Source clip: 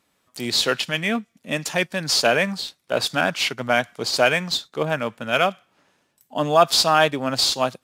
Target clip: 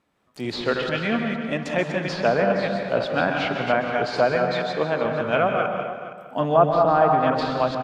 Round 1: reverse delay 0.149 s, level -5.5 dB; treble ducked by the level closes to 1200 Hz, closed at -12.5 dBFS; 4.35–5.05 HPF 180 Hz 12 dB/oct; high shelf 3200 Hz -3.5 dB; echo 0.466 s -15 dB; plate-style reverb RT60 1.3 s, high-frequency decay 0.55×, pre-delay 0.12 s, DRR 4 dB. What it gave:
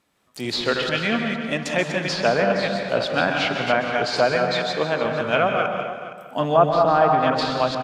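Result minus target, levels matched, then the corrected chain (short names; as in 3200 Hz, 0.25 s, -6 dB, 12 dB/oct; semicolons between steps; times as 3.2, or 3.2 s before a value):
8000 Hz band +8.0 dB
reverse delay 0.149 s, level -5.5 dB; treble ducked by the level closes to 1200 Hz, closed at -12.5 dBFS; 4.35–5.05 HPF 180 Hz 12 dB/oct; high shelf 3200 Hz -15 dB; echo 0.466 s -15 dB; plate-style reverb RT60 1.3 s, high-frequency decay 0.55×, pre-delay 0.12 s, DRR 4 dB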